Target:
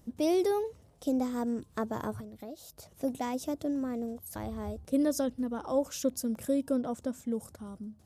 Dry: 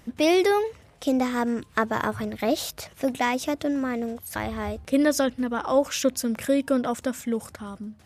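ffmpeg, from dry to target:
ffmpeg -i in.wav -filter_complex "[0:a]equalizer=frequency=2100:width_type=o:width=2:gain=-14.5,asettb=1/sr,asplit=3[link_01][link_02][link_03];[link_01]atrim=end=2.204[link_04];[link_02]atrim=start=2.2:end=2.94,asetpts=PTS-STARTPTS,afade=type=in:duration=0.004:curve=qsin,afade=type=out:start_time=0.736:duration=0.004:curve=qsin,acompressor=threshold=-40dB:ratio=3[link_05];[link_03]atrim=start=2.936[link_06];[link_04][link_05]acrossfade=duration=0.004:curve1=hsin:curve2=qsin[link_07];[link_07][link_06]acrossfade=duration=0.004:curve1=qsin:curve2=hsin,asettb=1/sr,asplit=3[link_08][link_09][link_10];[link_08]atrim=end=6.764[link_11];[link_09]atrim=start=6.76:end=7.31,asetpts=PTS-STARTPTS,afade=type=in:duration=0.004:curve=qsin,afade=type=out:start_time=0.546:duration=0.004:curve=qsin,highshelf=frequency=7700:gain=-9[link_12];[link_10]atrim=start=7.306[link_13];[link_11][link_12]acrossfade=duration=0.004:curve1=hsin:curve2=qsin[link_14];[link_14][link_13]acrossfade=duration=0.004:curve1=qsin:curve2=hsin,volume=-5dB" out.wav

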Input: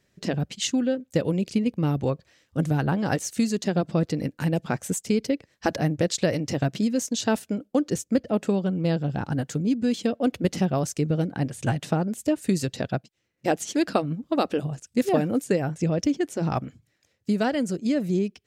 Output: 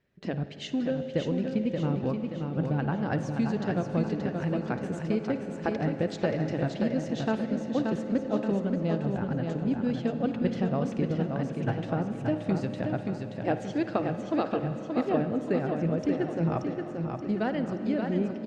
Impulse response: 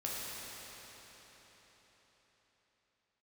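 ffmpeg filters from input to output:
-filter_complex "[0:a]lowpass=2800,aecho=1:1:578|1156|1734|2312|2890|3468:0.562|0.27|0.13|0.0622|0.0299|0.0143,asplit=2[link_01][link_02];[1:a]atrim=start_sample=2205,highshelf=frequency=4500:gain=-6,adelay=55[link_03];[link_02][link_03]afir=irnorm=-1:irlink=0,volume=-11.5dB[link_04];[link_01][link_04]amix=inputs=2:normalize=0,volume=-5.5dB" -ar 48000 -c:a libopus -b:a 64k

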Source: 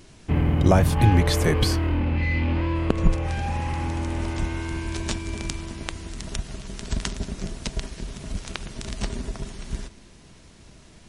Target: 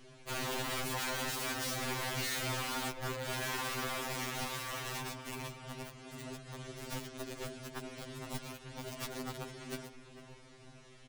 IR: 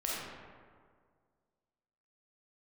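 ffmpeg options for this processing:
-filter_complex "[0:a]bass=frequency=250:gain=-5,treble=frequency=4000:gain=-6,asplit=2[link_01][link_02];[link_02]acompressor=threshold=-33dB:ratio=16,volume=-1.5dB[link_03];[link_01][link_03]amix=inputs=2:normalize=0,alimiter=limit=-12.5dB:level=0:latency=1:release=278,aeval=exprs='(mod(13.3*val(0)+1,2)-1)/13.3':channel_layout=same,asplit=2[link_04][link_05];[link_05]adelay=451,lowpass=frequency=2800:poles=1,volume=-13dB,asplit=2[link_06][link_07];[link_07]adelay=451,lowpass=frequency=2800:poles=1,volume=0.47,asplit=2[link_08][link_09];[link_09]adelay=451,lowpass=frequency=2800:poles=1,volume=0.47,asplit=2[link_10][link_11];[link_11]adelay=451,lowpass=frequency=2800:poles=1,volume=0.47,asplit=2[link_12][link_13];[link_13]adelay=451,lowpass=frequency=2800:poles=1,volume=0.47[link_14];[link_06][link_08][link_10][link_12][link_14]amix=inputs=5:normalize=0[link_15];[link_04][link_15]amix=inputs=2:normalize=0,afftfilt=real='re*2.45*eq(mod(b,6),0)':imag='im*2.45*eq(mod(b,6),0)':win_size=2048:overlap=0.75,volume=-7dB"

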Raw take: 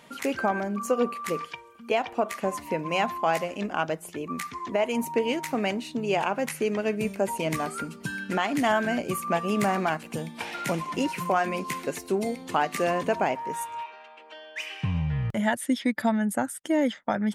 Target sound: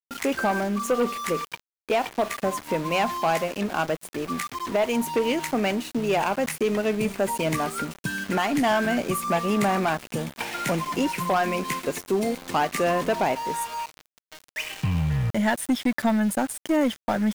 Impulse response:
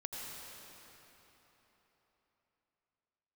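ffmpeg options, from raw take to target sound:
-af "aeval=exprs='0.251*(cos(1*acos(clip(val(0)/0.251,-1,1)))-cos(1*PI/2))+0.0316*(cos(5*acos(clip(val(0)/0.251,-1,1)))-cos(5*PI/2))+0.00398*(cos(8*acos(clip(val(0)/0.251,-1,1)))-cos(8*PI/2))':channel_layout=same,aeval=exprs='val(0)*gte(abs(val(0)),0.0211)':channel_layout=same"

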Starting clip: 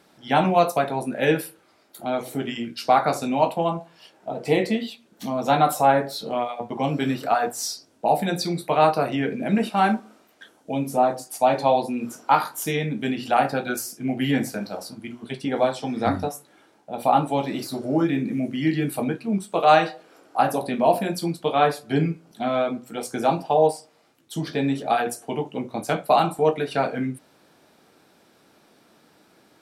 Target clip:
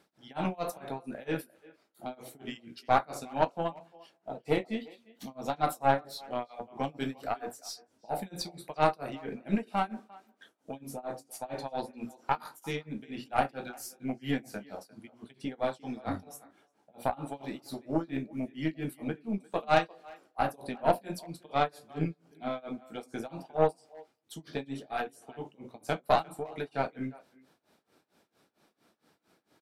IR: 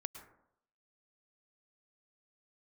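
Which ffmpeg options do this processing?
-filter_complex "[0:a]tremolo=f=4.4:d=0.97,asplit=2[link_01][link_02];[link_02]adelay=350,highpass=300,lowpass=3400,asoftclip=type=hard:threshold=-13.5dB,volume=-20dB[link_03];[link_01][link_03]amix=inputs=2:normalize=0,aeval=exprs='0.631*(cos(1*acos(clip(val(0)/0.631,-1,1)))-cos(1*PI/2))+0.0708*(cos(4*acos(clip(val(0)/0.631,-1,1)))-cos(4*PI/2))+0.0224*(cos(7*acos(clip(val(0)/0.631,-1,1)))-cos(7*PI/2))':channel_layout=same,volume=-6dB"

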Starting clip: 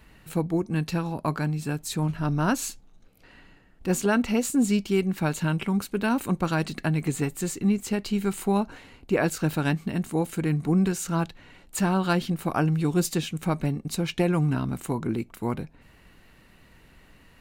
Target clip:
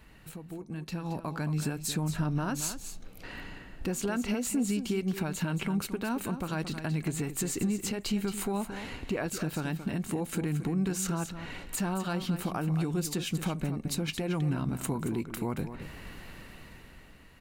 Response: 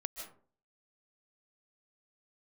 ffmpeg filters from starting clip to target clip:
-af "acompressor=threshold=-35dB:ratio=6,alimiter=level_in=7.5dB:limit=-24dB:level=0:latency=1:release=146,volume=-7.5dB,dynaudnorm=framelen=120:gausssize=17:maxgain=11.5dB,aecho=1:1:224:0.299,volume=-2dB"

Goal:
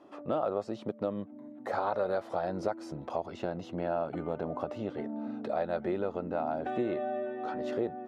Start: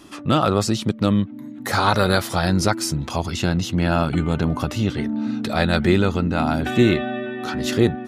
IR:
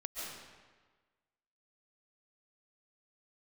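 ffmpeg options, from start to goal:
-af "bandpass=frequency=600:width_type=q:width=2.3:csg=0,acompressor=threshold=-30dB:ratio=2.5"

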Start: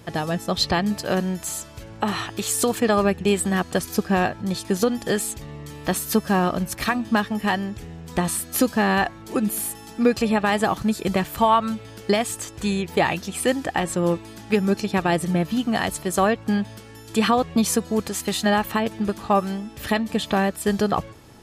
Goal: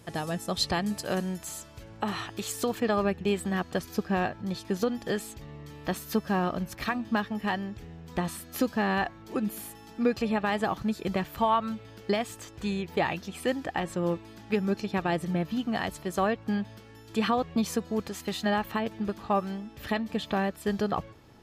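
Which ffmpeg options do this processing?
ffmpeg -i in.wav -af "asetnsamples=nb_out_samples=441:pad=0,asendcmd='1.38 equalizer g -3.5;2.52 equalizer g -10',equalizer=frequency=9400:width=1:gain=5.5,volume=-7dB" out.wav

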